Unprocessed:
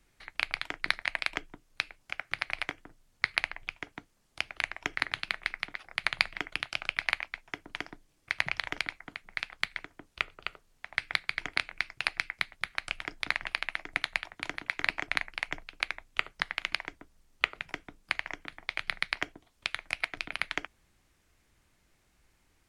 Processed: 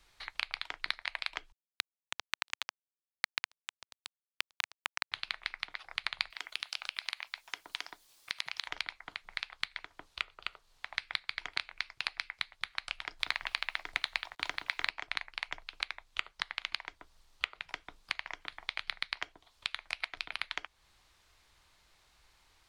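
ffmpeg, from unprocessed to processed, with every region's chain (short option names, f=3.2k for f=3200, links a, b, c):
-filter_complex "[0:a]asettb=1/sr,asplit=3[a][b][c];[a]atrim=end=1.524[d];[b]atrim=start=1.52:end=5.12,asetpts=PTS-STARTPTS,afade=t=in:d=0.004:c=qsin,afade=t=out:st=3.596:d=0.004:c=qsin,aecho=1:1:681:0.237,atrim=end_sample=158760,acrusher=bits=2:mix=0:aa=0.5[e];[c]atrim=start=5.116[f];[d][e]acrossfade=d=0.004:c1=hsin:c2=qsin[g];[g][f]acrossfade=d=0.004:c1=qsin:c2=hsin,asettb=1/sr,asplit=3[h][i][j];[h]atrim=end=6.304[k];[i]atrim=start=6.3:end=8.68,asetpts=PTS-STARTPTS,afade=t=in:d=0.004:c=qsin,afade=t=out:st=2.376:d=0.004:c=qsin,aemphasis=mode=production:type=bsi,acompressor=threshold=-32dB:ratio=2.5:attack=3.2:release=140:knee=1:detection=peak[l];[j]atrim=start=8.676[m];[k][l]acrossfade=d=0.004:c1=hsin:c2=qsin[n];[n][m]acrossfade=d=0.004:c1=qsin:c2=hsin,asettb=1/sr,asplit=3[o][p][q];[o]atrim=end=13.194[r];[p]atrim=start=13.19:end=14.89,asetpts=PTS-STARTPTS,afade=t=in:d=0.004:c=qsin,afade=t=out:st=1.696:d=0.004:c=qsin,acontrast=53,acrusher=bits=8:mix=0:aa=0.5[s];[q]atrim=start=14.886[t];[r][s]acrossfade=d=0.004:c1=hsin:c2=qsin[u];[u][t]acrossfade=d=0.004:c1=qsin:c2=hsin,equalizer=f=125:t=o:w=1:g=-4,equalizer=f=250:t=o:w=1:g=-8,equalizer=f=1k:t=o:w=1:g=7,equalizer=f=4k:t=o:w=1:g=10,acompressor=threshold=-39dB:ratio=2"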